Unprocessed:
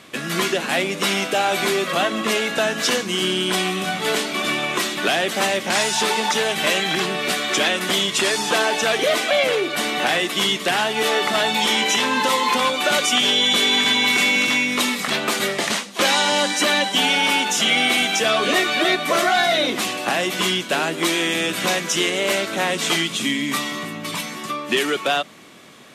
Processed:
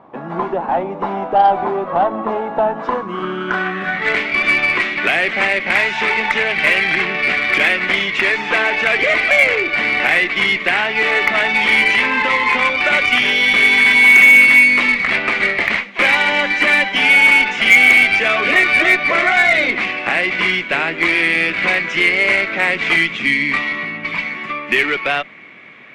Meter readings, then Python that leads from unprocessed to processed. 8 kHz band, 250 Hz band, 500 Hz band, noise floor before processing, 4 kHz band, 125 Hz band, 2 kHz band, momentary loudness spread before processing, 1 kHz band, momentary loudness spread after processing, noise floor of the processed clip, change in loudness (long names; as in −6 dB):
−11.5 dB, −0.5 dB, +0.5 dB, −32 dBFS, −3.0 dB, can't be measured, +10.0 dB, 6 LU, +3.0 dB, 12 LU, −29 dBFS, +6.0 dB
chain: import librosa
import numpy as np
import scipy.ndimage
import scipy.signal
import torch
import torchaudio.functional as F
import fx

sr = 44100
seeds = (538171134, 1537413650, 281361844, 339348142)

y = scipy.signal.sosfilt(scipy.signal.butter(6, 10000.0, 'lowpass', fs=sr, output='sos'), x)
y = fx.filter_sweep_lowpass(y, sr, from_hz=880.0, to_hz=2200.0, start_s=2.73, end_s=4.21, q=5.6)
y = fx.cheby_harmonics(y, sr, harmonics=(6,), levels_db=(-28,), full_scale_db=-1.0)
y = F.gain(torch.from_numpy(y), -1.0).numpy()